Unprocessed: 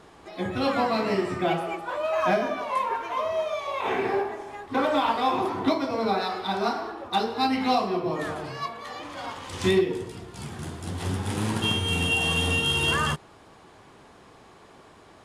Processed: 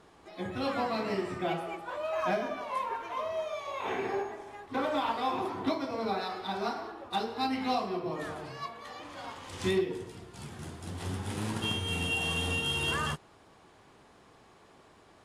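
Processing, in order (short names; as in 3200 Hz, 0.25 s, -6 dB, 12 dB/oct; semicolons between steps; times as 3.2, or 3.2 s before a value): 3.41–4.3 whine 6600 Hz -57 dBFS; gain -7 dB; AAC 64 kbps 44100 Hz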